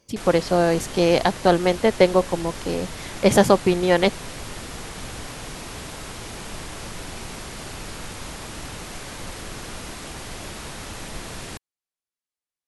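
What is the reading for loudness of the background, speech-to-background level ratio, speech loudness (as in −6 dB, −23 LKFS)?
−35.0 LKFS, 15.0 dB, −20.0 LKFS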